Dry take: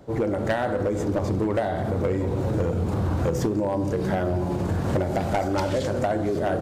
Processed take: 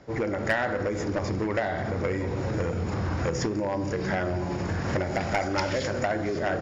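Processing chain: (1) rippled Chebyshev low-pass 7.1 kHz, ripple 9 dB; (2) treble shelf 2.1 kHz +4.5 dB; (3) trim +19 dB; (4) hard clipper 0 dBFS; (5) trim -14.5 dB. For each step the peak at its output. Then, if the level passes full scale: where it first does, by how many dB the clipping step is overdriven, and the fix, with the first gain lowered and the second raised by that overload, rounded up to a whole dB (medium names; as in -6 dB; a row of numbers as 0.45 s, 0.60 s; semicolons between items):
-18.5 dBFS, -16.0 dBFS, +3.0 dBFS, 0.0 dBFS, -14.5 dBFS; step 3, 3.0 dB; step 3 +16 dB, step 5 -11.5 dB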